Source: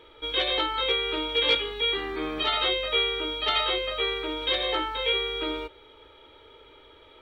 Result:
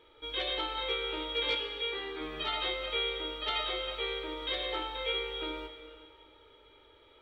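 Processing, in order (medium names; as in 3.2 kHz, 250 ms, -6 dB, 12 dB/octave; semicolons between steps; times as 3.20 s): 1.55–2.21 s: tone controls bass -8 dB, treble -5 dB; plate-style reverb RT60 2.2 s, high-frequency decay 0.95×, DRR 5.5 dB; trim -8.5 dB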